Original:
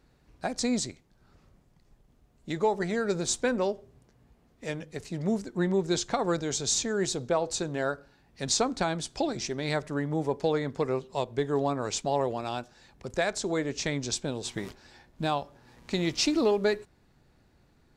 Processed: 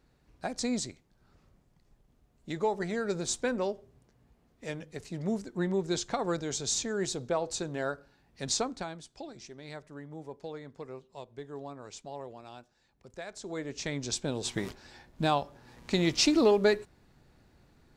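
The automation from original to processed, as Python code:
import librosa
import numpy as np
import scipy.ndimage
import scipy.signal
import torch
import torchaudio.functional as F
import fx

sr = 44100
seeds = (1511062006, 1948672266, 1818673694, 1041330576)

y = fx.gain(x, sr, db=fx.line((8.55, -3.5), (9.06, -14.5), (13.25, -14.5), (13.59, -7.5), (14.48, 1.5)))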